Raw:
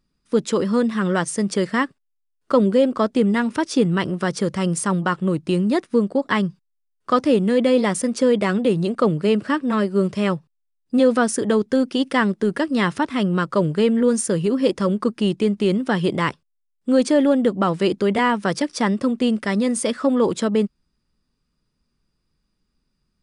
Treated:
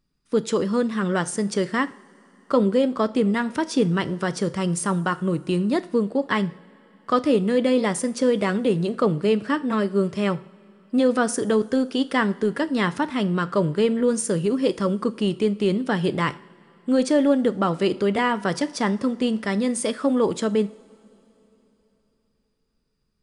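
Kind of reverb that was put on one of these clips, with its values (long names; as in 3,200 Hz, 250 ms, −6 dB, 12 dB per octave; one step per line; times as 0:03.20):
coupled-rooms reverb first 0.44 s, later 3.6 s, from −20 dB, DRR 13 dB
level −2.5 dB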